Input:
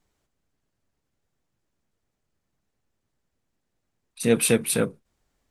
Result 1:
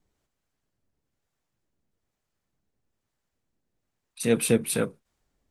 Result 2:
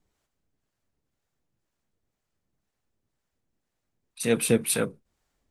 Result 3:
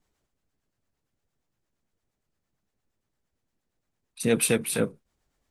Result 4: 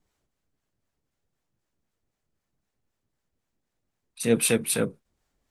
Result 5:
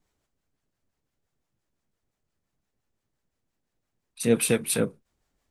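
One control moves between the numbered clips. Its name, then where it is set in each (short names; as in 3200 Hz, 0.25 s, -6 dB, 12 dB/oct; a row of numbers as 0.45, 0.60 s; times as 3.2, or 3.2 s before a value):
harmonic tremolo, rate: 1.1, 2, 8.7, 3.9, 5.8 Hz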